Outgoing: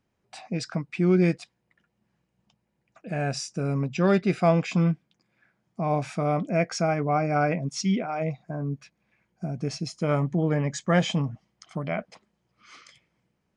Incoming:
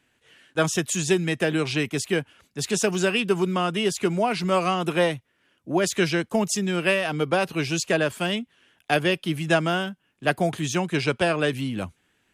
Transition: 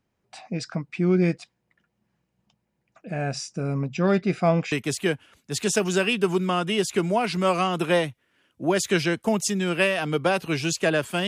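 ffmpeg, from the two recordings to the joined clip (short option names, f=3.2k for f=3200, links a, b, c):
-filter_complex "[0:a]apad=whole_dur=11.27,atrim=end=11.27,atrim=end=4.722[a];[1:a]atrim=start=1.788:end=8.34[b];[a][b]acrossfade=d=0.004:c1=hsin:c2=hsin"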